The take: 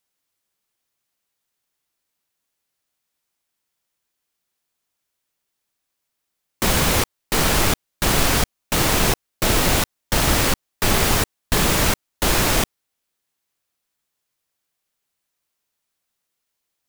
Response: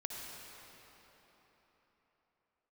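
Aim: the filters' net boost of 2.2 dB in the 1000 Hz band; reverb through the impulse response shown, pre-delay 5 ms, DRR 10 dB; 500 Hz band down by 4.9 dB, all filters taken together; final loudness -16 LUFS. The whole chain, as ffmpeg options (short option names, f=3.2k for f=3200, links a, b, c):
-filter_complex "[0:a]equalizer=f=500:t=o:g=-8,equalizer=f=1k:t=o:g=5,asplit=2[a][b];[1:a]atrim=start_sample=2205,adelay=5[c];[b][c]afir=irnorm=-1:irlink=0,volume=-10.5dB[d];[a][d]amix=inputs=2:normalize=0,volume=3dB"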